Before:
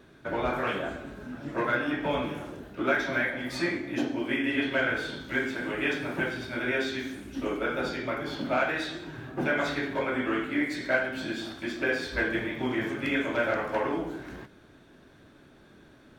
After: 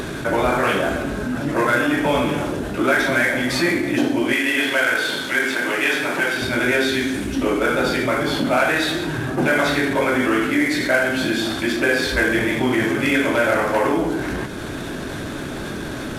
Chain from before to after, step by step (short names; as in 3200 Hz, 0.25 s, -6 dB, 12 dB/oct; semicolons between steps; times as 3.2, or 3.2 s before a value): CVSD 64 kbps; upward compressor, threshold -41 dBFS; 4.33–6.42 HPF 620 Hz 6 dB/oct; fast leveller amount 50%; gain +7 dB